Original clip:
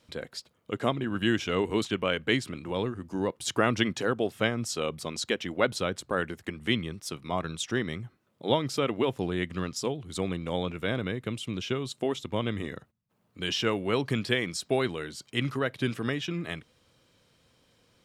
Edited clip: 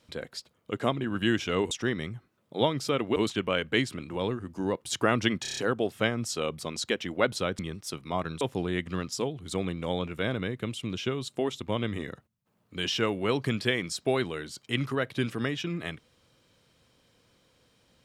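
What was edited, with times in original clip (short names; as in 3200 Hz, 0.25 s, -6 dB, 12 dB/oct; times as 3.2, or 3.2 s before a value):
3.97 stutter 0.03 s, 6 plays
5.99–6.78 cut
7.6–9.05 move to 1.71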